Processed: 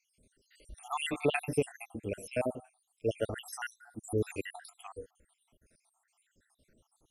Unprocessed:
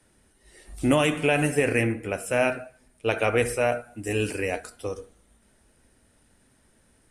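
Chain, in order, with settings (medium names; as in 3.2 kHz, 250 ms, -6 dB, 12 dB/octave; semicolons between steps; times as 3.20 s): random holes in the spectrogram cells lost 74%; 1.43–3.56 s: peaking EQ 1.6 kHz -14.5 dB -> -6.5 dB 1.7 oct; trim -3 dB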